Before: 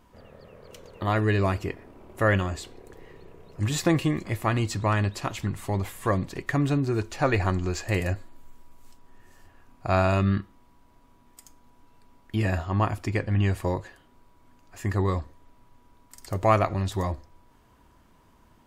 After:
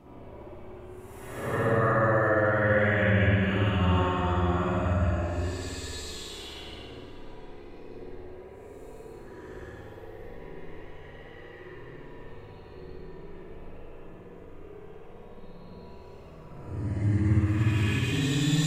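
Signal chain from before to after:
extreme stretch with random phases 11×, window 0.10 s, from 0:02.06
brickwall limiter −19 dBFS, peak gain reduction 10.5 dB
spring reverb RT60 1.3 s, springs 57 ms, chirp 50 ms, DRR −7 dB
level −4.5 dB

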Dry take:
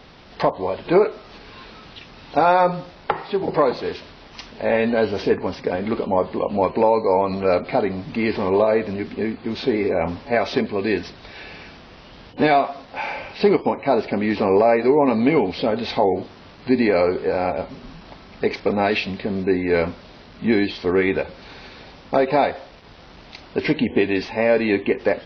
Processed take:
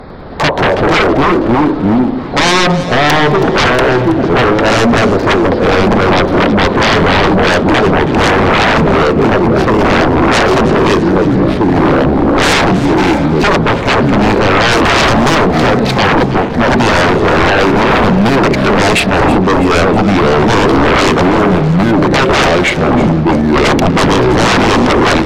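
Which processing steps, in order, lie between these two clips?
adaptive Wiener filter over 15 samples
0:14.71–0:15.35: high-shelf EQ 4,200 Hz +8 dB
delay with pitch and tempo change per echo 102 ms, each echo −3 semitones, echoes 3
sine wavefolder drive 16 dB, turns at −3.5 dBFS
on a send: delay that swaps between a low-pass and a high-pass 162 ms, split 810 Hz, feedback 73%, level −12 dB
on the sum: level −2.5 dB

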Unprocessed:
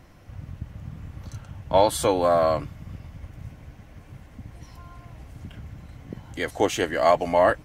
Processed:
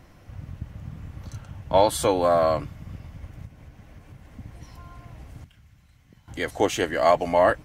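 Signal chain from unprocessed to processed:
0:03.45–0:04.25: downward compressor, threshold −41 dBFS, peak gain reduction 7.5 dB
0:05.44–0:06.28: guitar amp tone stack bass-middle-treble 5-5-5

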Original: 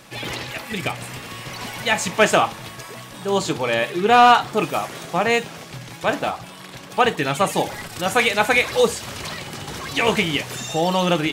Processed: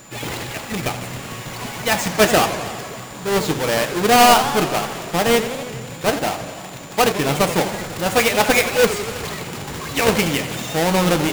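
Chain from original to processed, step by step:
each half-wave held at its own peak
steady tone 7,100 Hz −42 dBFS
feedback echo with a swinging delay time 82 ms, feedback 76%, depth 208 cents, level −12 dB
level −3 dB

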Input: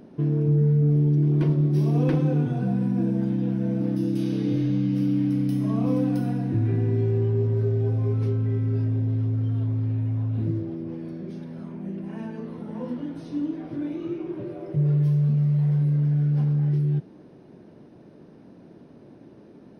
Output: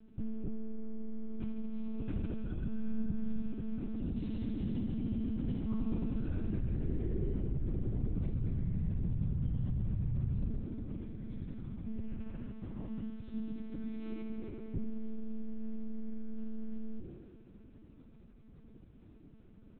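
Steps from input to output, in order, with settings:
sub-octave generator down 1 octave, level +3 dB
parametric band 660 Hz −12 dB 1.7 octaves
notch filter 1,800 Hz, Q 12
comb filter 5.4 ms, depth 41%
downward compressor 6 to 1, threshold −22 dBFS, peak gain reduction 8.5 dB
tuned comb filter 98 Hz, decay 1.7 s, harmonics odd, mix 70%
on a send: feedback echo with a high-pass in the loop 74 ms, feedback 84%, high-pass 160 Hz, level −5.5 dB
on the sum: one-pitch LPC vocoder at 8 kHz 220 Hz

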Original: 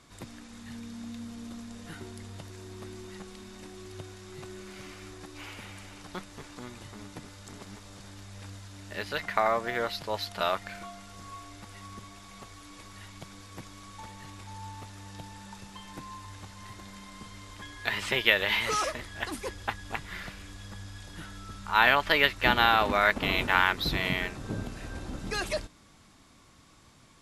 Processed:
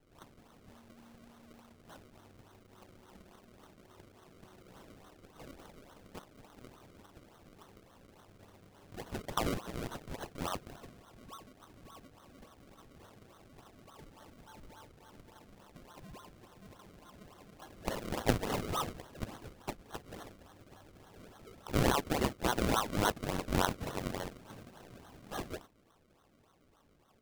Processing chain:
high-pass filter 100 Hz
low shelf with overshoot 740 Hz −10 dB, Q 1.5
sample-and-hold swept by an LFO 35×, swing 100% 3.5 Hz
level −7.5 dB

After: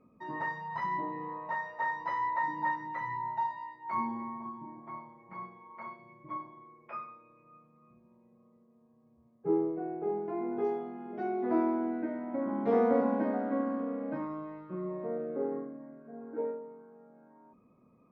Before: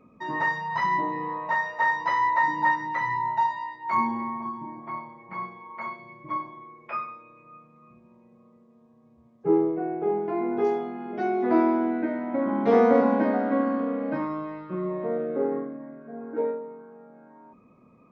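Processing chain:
high-shelf EQ 2,200 Hz −10 dB
level −7 dB

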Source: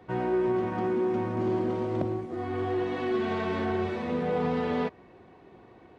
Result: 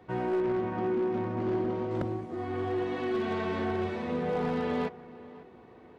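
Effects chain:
wavefolder on the positive side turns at −21.5 dBFS
0:00.40–0:01.91: high-frequency loss of the air 89 metres
on a send: tape delay 544 ms, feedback 38%, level −17.5 dB, low-pass 2,500 Hz
on the sum: level −2 dB

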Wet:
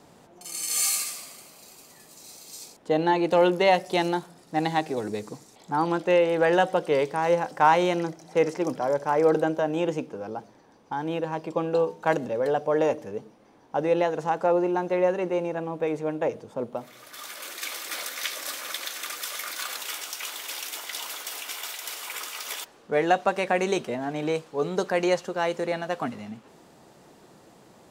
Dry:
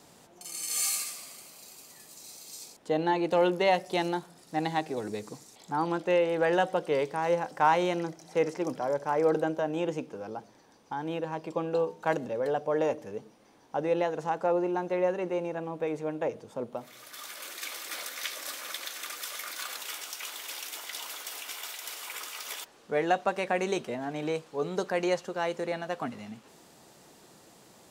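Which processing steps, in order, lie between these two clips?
one half of a high-frequency compander decoder only
level +4.5 dB

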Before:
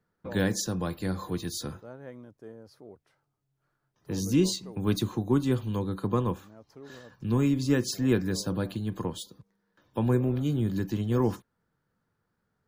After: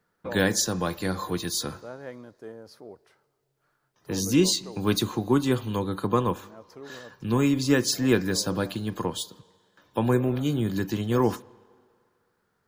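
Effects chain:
low-shelf EQ 310 Hz −9 dB
on a send: convolution reverb RT60 2.2 s, pre-delay 8 ms, DRR 21 dB
on the sum: level +7.5 dB

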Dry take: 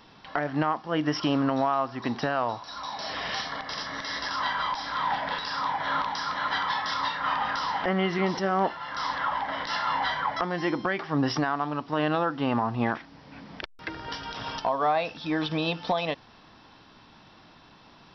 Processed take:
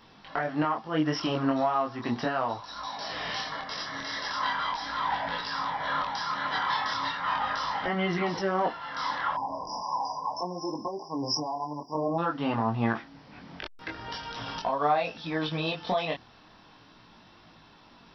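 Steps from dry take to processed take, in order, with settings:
0:09.34–0:12.18: time-frequency box erased 1,100–4,800 Hz
0:09.81–0:11.95: spectral tilt +3 dB per octave
multi-voice chorus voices 2, 0.37 Hz, delay 22 ms, depth 4.8 ms
level +1.5 dB

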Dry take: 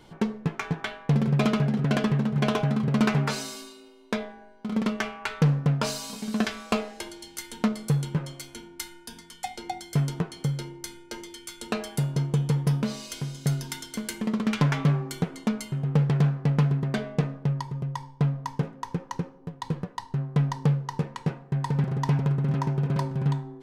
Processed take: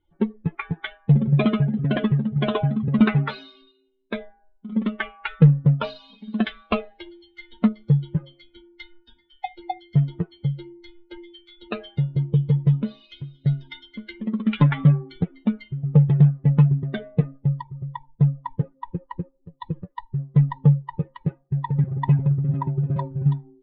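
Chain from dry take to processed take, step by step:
spectral dynamics exaggerated over time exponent 2
Chebyshev low-pass filter 3,700 Hz, order 5
low-shelf EQ 220 Hz +5 dB
level +6.5 dB

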